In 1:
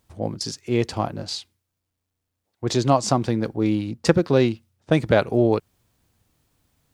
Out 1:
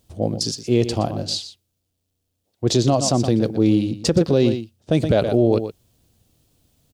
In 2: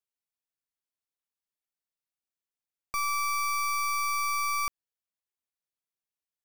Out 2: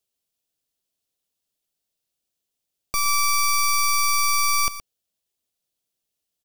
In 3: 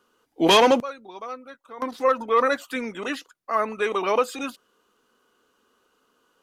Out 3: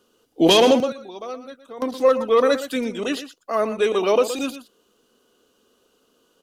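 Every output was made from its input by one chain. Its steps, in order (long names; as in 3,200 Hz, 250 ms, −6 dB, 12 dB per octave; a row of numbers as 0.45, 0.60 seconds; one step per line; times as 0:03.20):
flat-topped bell 1,400 Hz −8.5 dB
single-tap delay 119 ms −12.5 dB
boost into a limiter +11 dB
loudness normalisation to −20 LKFS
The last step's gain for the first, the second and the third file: −5.5, +1.0, −5.0 decibels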